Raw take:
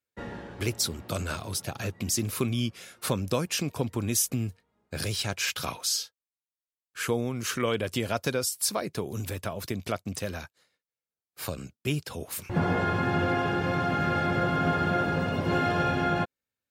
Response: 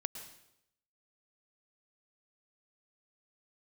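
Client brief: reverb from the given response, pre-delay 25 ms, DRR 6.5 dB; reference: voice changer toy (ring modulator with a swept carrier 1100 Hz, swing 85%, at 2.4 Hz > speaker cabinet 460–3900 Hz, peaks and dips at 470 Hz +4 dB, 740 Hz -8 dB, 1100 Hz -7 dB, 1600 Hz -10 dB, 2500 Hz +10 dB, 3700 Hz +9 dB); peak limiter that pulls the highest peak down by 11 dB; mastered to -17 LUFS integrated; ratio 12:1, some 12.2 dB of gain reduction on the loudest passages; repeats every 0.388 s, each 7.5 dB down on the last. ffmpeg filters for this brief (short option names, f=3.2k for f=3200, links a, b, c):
-filter_complex "[0:a]acompressor=threshold=-34dB:ratio=12,alimiter=level_in=6.5dB:limit=-24dB:level=0:latency=1,volume=-6.5dB,aecho=1:1:388|776|1164|1552|1940:0.422|0.177|0.0744|0.0312|0.0131,asplit=2[a][b];[1:a]atrim=start_sample=2205,adelay=25[c];[b][c]afir=irnorm=-1:irlink=0,volume=-6dB[d];[a][d]amix=inputs=2:normalize=0,aeval=exprs='val(0)*sin(2*PI*1100*n/s+1100*0.85/2.4*sin(2*PI*2.4*n/s))':c=same,highpass=460,equalizer=f=470:t=q:w=4:g=4,equalizer=f=740:t=q:w=4:g=-8,equalizer=f=1.1k:t=q:w=4:g=-7,equalizer=f=1.6k:t=q:w=4:g=-10,equalizer=f=2.5k:t=q:w=4:g=10,equalizer=f=3.7k:t=q:w=4:g=9,lowpass=f=3.9k:w=0.5412,lowpass=f=3.9k:w=1.3066,volume=24dB"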